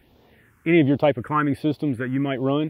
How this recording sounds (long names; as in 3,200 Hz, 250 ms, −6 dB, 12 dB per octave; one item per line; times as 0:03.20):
phaser sweep stages 4, 1.3 Hz, lowest notch 640–1,700 Hz